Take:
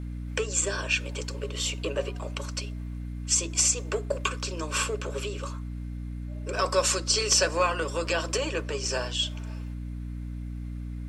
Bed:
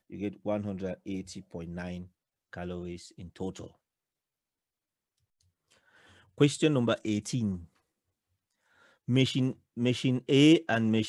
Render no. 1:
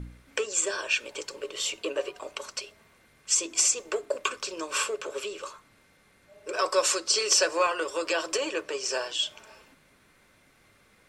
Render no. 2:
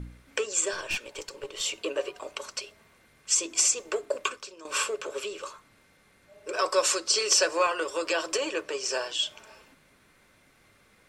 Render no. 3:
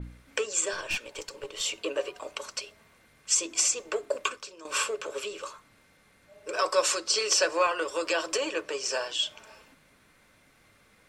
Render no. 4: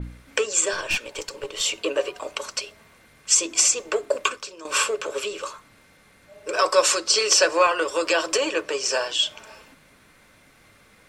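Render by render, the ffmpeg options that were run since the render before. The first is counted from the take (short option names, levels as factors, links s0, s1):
-af "bandreject=f=60:t=h:w=4,bandreject=f=120:t=h:w=4,bandreject=f=180:t=h:w=4,bandreject=f=240:t=h:w=4,bandreject=f=300:t=h:w=4"
-filter_complex "[0:a]asettb=1/sr,asplit=3[s0][s1][s2];[s0]atrim=end=0.734[s3];[s1]atrim=start=0.73:end=1.61,asetpts=PTS-STARTPTS,afade=t=in:d=0.004:c=qsin,afade=t=out:st=0.876:d=0.004:c=qsin,aeval=exprs='(tanh(15.8*val(0)+0.55)-tanh(0.55))/15.8':c=same[s4];[s2]atrim=start=1.606[s5];[s3][s4]acrossfade=d=0.004:c1=hsin:c2=qsin[s6];[s6][s5]acrossfade=d=0.004:c1=qsin:c2=hsin,asplit=2[s7][s8];[s7]atrim=end=4.65,asetpts=PTS-STARTPTS,afade=t=out:st=4.24:d=0.41:c=qua:silence=0.211349[s9];[s8]atrim=start=4.65,asetpts=PTS-STARTPTS,afade=t=in:d=0.004:c=hsin:silence=0.211349[s10];[s9][s10]concat=n=2:v=0:a=1"
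-af "bandreject=f=380:w=12,adynamicequalizer=threshold=0.0112:dfrequency=5300:dqfactor=0.7:tfrequency=5300:tqfactor=0.7:attack=5:release=100:ratio=0.375:range=2.5:mode=cutabove:tftype=highshelf"
-af "volume=2.11"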